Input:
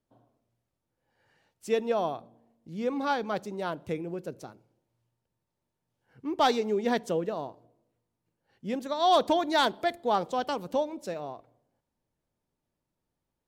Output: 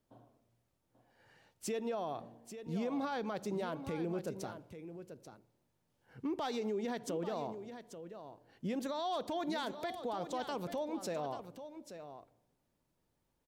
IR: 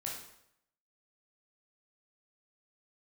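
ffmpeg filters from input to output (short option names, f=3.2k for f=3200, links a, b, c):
-af "acompressor=threshold=-34dB:ratio=3,alimiter=level_in=8.5dB:limit=-24dB:level=0:latency=1:release=47,volume=-8.5dB,aecho=1:1:837:0.299,volume=3dB"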